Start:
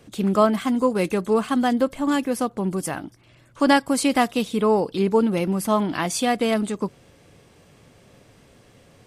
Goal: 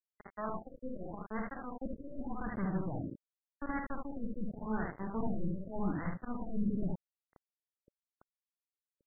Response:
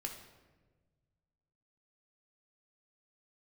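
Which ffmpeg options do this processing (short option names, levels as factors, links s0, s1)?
-filter_complex "[0:a]aeval=exprs='0.668*(cos(1*acos(clip(val(0)/0.668,-1,1)))-cos(1*PI/2))+0.0168*(cos(5*acos(clip(val(0)/0.668,-1,1)))-cos(5*PI/2))+0.15*(cos(7*acos(clip(val(0)/0.668,-1,1)))-cos(7*PI/2))':c=same,areverse,acompressor=threshold=0.0224:ratio=10,areverse,asoftclip=type=tanh:threshold=0.075,asubboost=boost=4:cutoff=240,asplit=2[s0][s1];[s1]aecho=0:1:50|74:0.447|0.668[s2];[s0][s2]amix=inputs=2:normalize=0,aeval=exprs='val(0)*gte(abs(val(0)),0.0112)':c=same,afftfilt=real='re*lt(b*sr/1024,560*pow(2200/560,0.5+0.5*sin(2*PI*0.86*pts/sr)))':imag='im*lt(b*sr/1024,560*pow(2200/560,0.5+0.5*sin(2*PI*0.86*pts/sr)))':win_size=1024:overlap=0.75,volume=0.841"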